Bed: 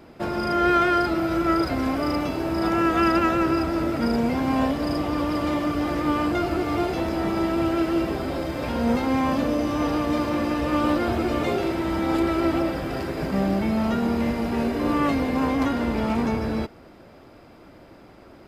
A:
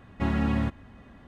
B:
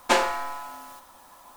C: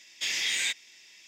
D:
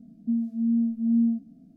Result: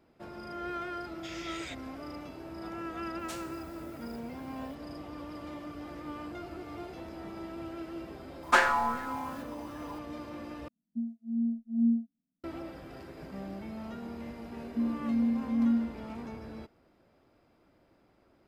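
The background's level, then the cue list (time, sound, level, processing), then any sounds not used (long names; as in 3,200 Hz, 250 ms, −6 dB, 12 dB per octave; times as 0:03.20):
bed −18 dB
0:01.02: mix in C −13 dB + low-pass filter 3,500 Hz 6 dB per octave
0:03.19: mix in B −14 dB + first difference
0:08.43: mix in B −8 dB + auto-filter bell 2.6 Hz 830–1,700 Hz +15 dB
0:10.68: overwrite with D −3 dB + expander for the loud parts 2.5 to 1, over −41 dBFS
0:14.49: mix in D −4.5 dB
not used: A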